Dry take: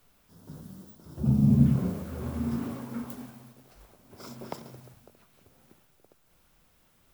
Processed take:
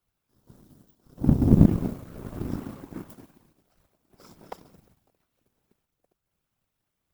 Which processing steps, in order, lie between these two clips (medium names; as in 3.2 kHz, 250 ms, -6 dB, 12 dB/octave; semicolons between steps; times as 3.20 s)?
whisper effect; power-law waveshaper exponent 1.4; trim +5.5 dB